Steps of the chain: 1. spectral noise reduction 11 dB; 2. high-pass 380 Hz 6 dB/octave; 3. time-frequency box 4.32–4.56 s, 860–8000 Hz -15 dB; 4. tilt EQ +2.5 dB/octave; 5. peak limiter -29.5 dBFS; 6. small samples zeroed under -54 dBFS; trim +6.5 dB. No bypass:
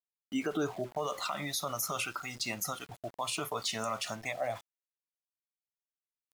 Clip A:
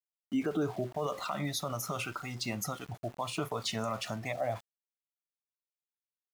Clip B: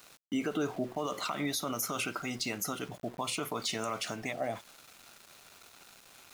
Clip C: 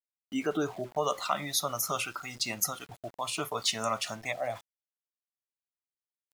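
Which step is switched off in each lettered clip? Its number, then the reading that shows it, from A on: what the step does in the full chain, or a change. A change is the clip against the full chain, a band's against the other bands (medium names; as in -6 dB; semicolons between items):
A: 4, 125 Hz band +8.0 dB; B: 1, 250 Hz band +3.5 dB; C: 5, crest factor change +7.5 dB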